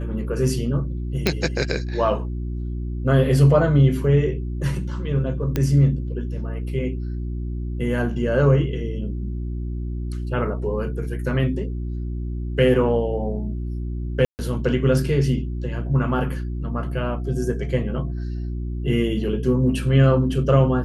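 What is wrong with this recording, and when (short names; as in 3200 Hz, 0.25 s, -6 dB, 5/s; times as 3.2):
hum 60 Hz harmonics 6 -27 dBFS
1.27 pop -4 dBFS
5.56 pop -9 dBFS
14.25–14.39 gap 0.139 s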